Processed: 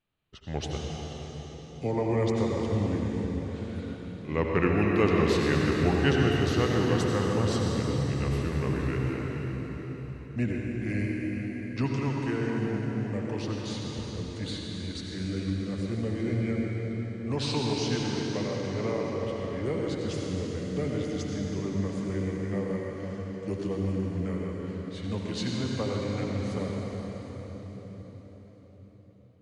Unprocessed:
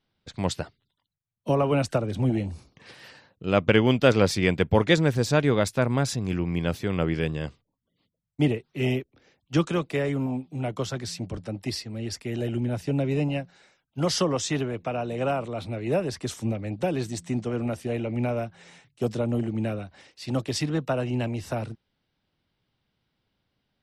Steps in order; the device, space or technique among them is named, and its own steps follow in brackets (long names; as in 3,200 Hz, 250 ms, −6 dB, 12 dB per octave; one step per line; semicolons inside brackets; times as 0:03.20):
slowed and reverbed (speed change −19%; convolution reverb RT60 5.1 s, pre-delay 71 ms, DRR −2 dB)
level −7 dB